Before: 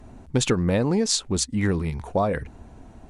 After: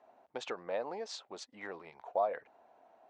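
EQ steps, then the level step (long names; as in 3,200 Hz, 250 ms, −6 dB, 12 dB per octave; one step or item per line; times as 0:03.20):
resonant band-pass 660 Hz, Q 2.5
high-frequency loss of the air 160 metres
first difference
+15.5 dB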